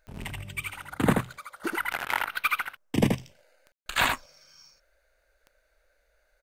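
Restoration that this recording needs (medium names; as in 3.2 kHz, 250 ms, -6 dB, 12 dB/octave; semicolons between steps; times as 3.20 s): de-click; room tone fill 3.72–3.86 s; inverse comb 79 ms -4 dB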